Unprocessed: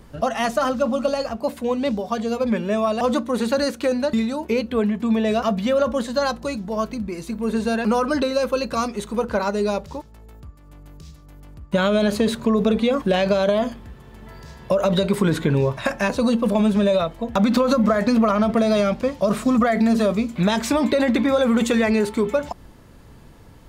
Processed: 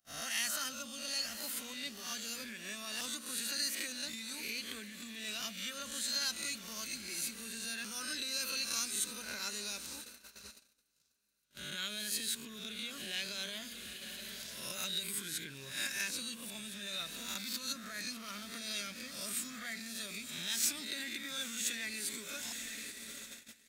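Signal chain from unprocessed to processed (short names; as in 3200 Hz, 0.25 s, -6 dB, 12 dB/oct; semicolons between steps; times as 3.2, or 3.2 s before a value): spectral swells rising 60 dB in 0.63 s; diffused feedback echo 0.917 s, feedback 58%, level -14 dB; gate -30 dBFS, range -31 dB; band shelf 740 Hz -13 dB; compressor 5:1, threshold -26 dBFS, peak gain reduction 12.5 dB; pre-emphasis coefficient 0.97; gain +4 dB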